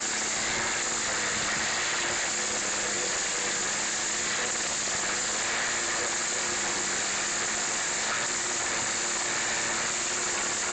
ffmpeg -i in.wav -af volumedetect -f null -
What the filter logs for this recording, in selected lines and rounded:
mean_volume: -29.1 dB
max_volume: -19.0 dB